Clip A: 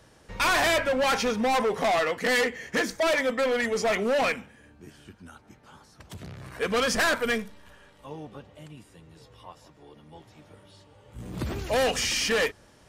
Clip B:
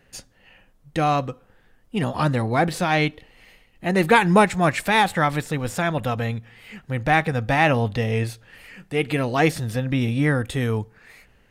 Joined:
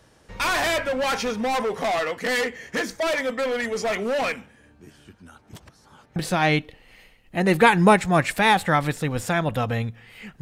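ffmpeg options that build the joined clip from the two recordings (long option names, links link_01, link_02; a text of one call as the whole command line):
ffmpeg -i cue0.wav -i cue1.wav -filter_complex "[0:a]apad=whole_dur=10.41,atrim=end=10.41,asplit=2[link_01][link_02];[link_01]atrim=end=5.532[link_03];[link_02]atrim=start=5.528:end=6.162,asetpts=PTS-STARTPTS,areverse[link_04];[1:a]atrim=start=2.648:end=6.9[link_05];[link_03][link_04]acrossfade=duration=0.004:curve1=hsin:curve2=hsin[link_06];[link_06][link_05]acrossfade=duration=0.004:curve1=hsin:curve2=hsin" out.wav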